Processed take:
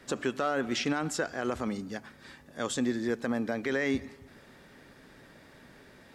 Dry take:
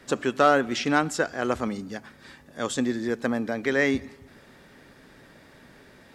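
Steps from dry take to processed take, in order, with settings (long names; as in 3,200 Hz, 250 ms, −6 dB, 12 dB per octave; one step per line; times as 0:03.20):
brickwall limiter −16.5 dBFS, peak gain reduction 9 dB
level −2.5 dB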